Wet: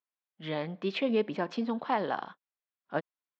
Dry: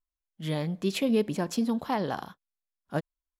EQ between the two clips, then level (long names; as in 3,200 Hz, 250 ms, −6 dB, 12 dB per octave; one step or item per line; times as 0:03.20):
band-pass filter 190–4,200 Hz
high-frequency loss of the air 210 metres
low-shelf EQ 430 Hz −9.5 dB
+4.0 dB